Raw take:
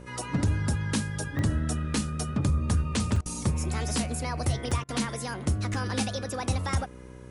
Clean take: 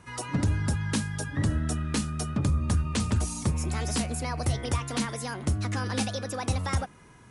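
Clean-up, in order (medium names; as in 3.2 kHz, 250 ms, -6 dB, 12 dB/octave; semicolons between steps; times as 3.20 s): de-hum 62.8 Hz, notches 9; interpolate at 1.39/3.16/4.71/5.74 s, 3.2 ms; interpolate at 3.21/4.84 s, 46 ms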